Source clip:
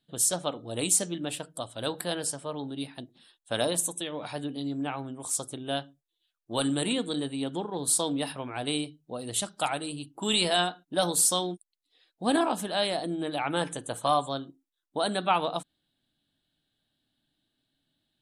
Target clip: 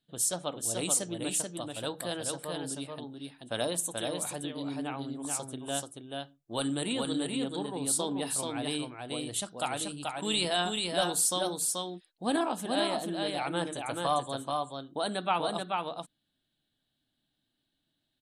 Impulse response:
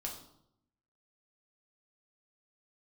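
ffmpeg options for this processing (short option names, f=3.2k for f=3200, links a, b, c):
-af "aecho=1:1:433:0.668,volume=-4dB"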